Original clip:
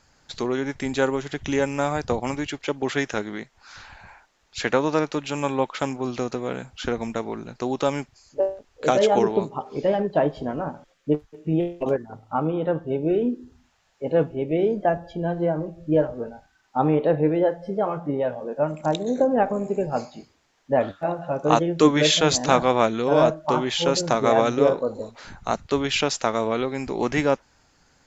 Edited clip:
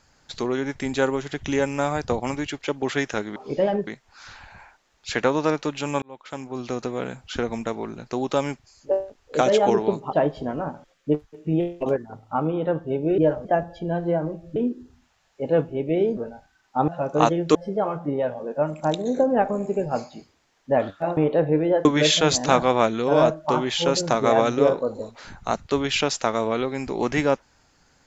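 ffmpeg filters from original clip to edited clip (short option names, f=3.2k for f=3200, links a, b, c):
-filter_complex "[0:a]asplit=13[a][b][c][d][e][f][g][h][i][j][k][l][m];[a]atrim=end=3.362[n];[b]atrim=start=9.618:end=10.132[o];[c]atrim=start=3.358:end=5.51,asetpts=PTS-STARTPTS,afade=t=out:st=2.148:d=0.004:c=hsin[p];[d]atrim=start=5.51:end=9.622,asetpts=PTS-STARTPTS,afade=t=in:d=0.85[q];[e]atrim=start=10.128:end=13.182[r];[f]atrim=start=15.898:end=16.172[s];[g]atrim=start=14.788:end=15.902[t];[h]atrim=start=13.178:end=14.792[u];[i]atrim=start=16.168:end=16.882[v];[j]atrim=start=21.178:end=21.852[w];[k]atrim=start=17.558:end=21.182[x];[l]atrim=start=16.878:end=17.562[y];[m]atrim=start=21.848[z];[n][o]acrossfade=d=0.004:c1=hsin:c2=hsin[aa];[p][q]concat=n=2:v=0:a=1[ab];[aa][ab]acrossfade=d=0.004:c1=hsin:c2=hsin[ac];[ac][r]acrossfade=d=0.004:c1=hsin:c2=hsin[ad];[ad][s]acrossfade=d=0.004:c1=hsin:c2=hsin[ae];[ae][t]acrossfade=d=0.004:c1=hsin:c2=hsin[af];[af][u]acrossfade=d=0.004:c1=hsin:c2=hsin[ag];[ag][v]acrossfade=d=0.004:c1=hsin:c2=hsin[ah];[ah][w]acrossfade=d=0.004:c1=hsin:c2=hsin[ai];[ai][x]acrossfade=d=0.004:c1=hsin:c2=hsin[aj];[aj][y]acrossfade=d=0.004:c1=hsin:c2=hsin[ak];[ak][z]acrossfade=d=0.004:c1=hsin:c2=hsin"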